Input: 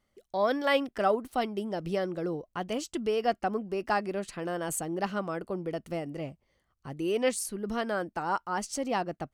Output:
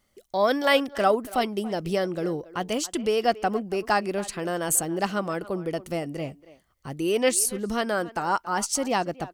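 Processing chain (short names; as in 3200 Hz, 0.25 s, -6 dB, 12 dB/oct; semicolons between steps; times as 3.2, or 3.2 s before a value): high shelf 4400 Hz +8.5 dB; speakerphone echo 0.28 s, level -17 dB; gain +4.5 dB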